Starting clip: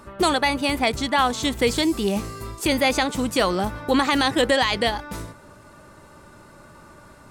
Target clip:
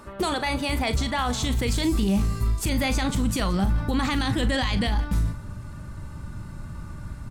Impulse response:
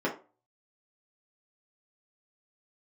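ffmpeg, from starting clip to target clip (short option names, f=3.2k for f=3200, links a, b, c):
-filter_complex "[0:a]asubboost=boost=11.5:cutoff=140,alimiter=limit=-16.5dB:level=0:latency=1:release=12,asplit=2[a][b];[b]adelay=41,volume=-11.5dB[c];[a][c]amix=inputs=2:normalize=0,asplit=2[d][e];[e]aecho=0:1:174:0.0891[f];[d][f]amix=inputs=2:normalize=0"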